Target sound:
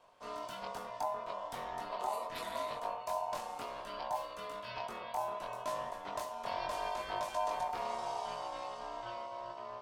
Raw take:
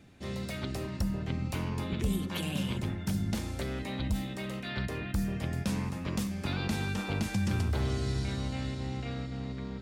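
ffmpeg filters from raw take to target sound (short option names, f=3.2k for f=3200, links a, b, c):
-af "flanger=delay=19.5:depth=2.7:speed=0.7,aeval=exprs='val(0)*sin(2*PI*820*n/s)':c=same,volume=-1.5dB"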